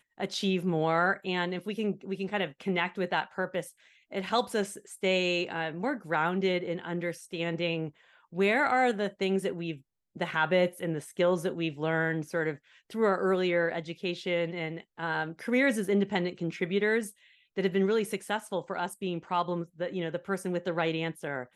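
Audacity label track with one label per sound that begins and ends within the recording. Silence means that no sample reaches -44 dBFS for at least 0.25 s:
4.120000	7.900000	sound
8.330000	9.770000	sound
10.160000	12.560000	sound
12.900000	17.110000	sound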